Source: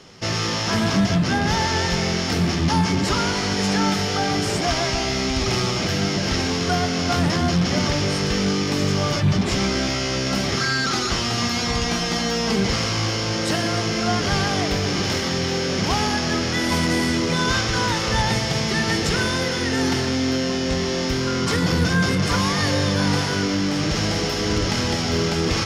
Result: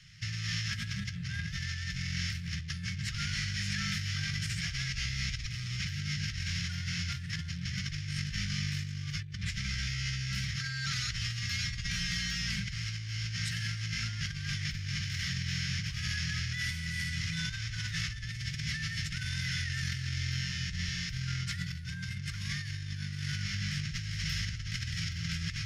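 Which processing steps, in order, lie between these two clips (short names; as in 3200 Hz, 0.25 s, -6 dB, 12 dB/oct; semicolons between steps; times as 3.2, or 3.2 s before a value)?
elliptic band-stop 140–1800 Hz, stop band 40 dB; high shelf 2400 Hz -8.5 dB; negative-ratio compressor -31 dBFS, ratio -1; gain -4.5 dB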